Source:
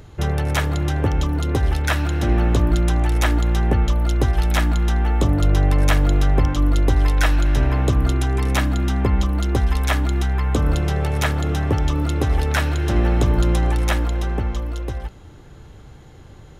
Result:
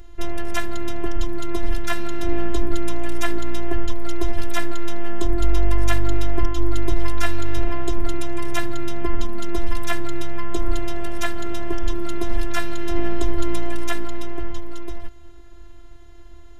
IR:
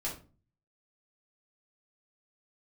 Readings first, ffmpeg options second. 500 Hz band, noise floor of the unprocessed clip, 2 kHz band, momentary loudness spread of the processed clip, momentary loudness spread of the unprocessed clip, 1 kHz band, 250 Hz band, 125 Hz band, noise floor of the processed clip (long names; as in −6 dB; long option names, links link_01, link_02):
−2.5 dB, −43 dBFS, −4.5 dB, 7 LU, 4 LU, −4.5 dB, −4.0 dB, −12.0 dB, −38 dBFS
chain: -af "lowshelf=frequency=120:width_type=q:width=3:gain=7.5,afftfilt=real='hypot(re,im)*cos(PI*b)':imag='0':win_size=512:overlap=0.75,volume=-1dB"